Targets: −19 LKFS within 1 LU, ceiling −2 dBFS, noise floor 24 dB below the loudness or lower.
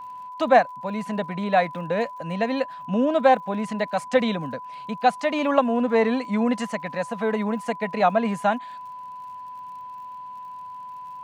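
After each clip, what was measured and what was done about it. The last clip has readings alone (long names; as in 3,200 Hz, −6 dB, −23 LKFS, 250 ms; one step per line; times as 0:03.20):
crackle rate 57 per second; interfering tone 1,000 Hz; level of the tone −35 dBFS; integrated loudness −23.5 LKFS; sample peak −4.0 dBFS; target loudness −19.0 LKFS
→ click removal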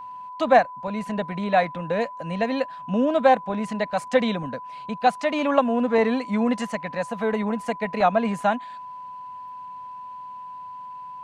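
crackle rate 0.53 per second; interfering tone 1,000 Hz; level of the tone −35 dBFS
→ notch filter 1,000 Hz, Q 30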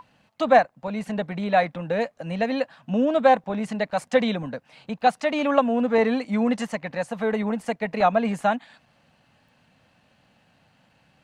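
interfering tone none found; integrated loudness −23.5 LKFS; sample peak −3.5 dBFS; target loudness −19.0 LKFS
→ level +4.5 dB
brickwall limiter −2 dBFS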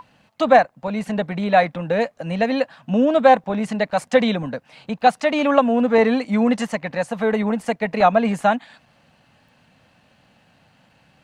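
integrated loudness −19.5 LKFS; sample peak −2.0 dBFS; background noise floor −59 dBFS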